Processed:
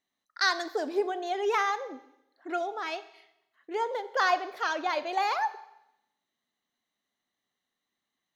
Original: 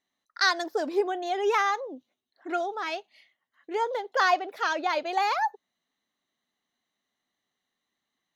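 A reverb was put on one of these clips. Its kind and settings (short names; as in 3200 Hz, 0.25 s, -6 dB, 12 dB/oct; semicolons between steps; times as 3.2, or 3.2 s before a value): Schroeder reverb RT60 0.85 s, combs from 30 ms, DRR 13.5 dB; gain -2.5 dB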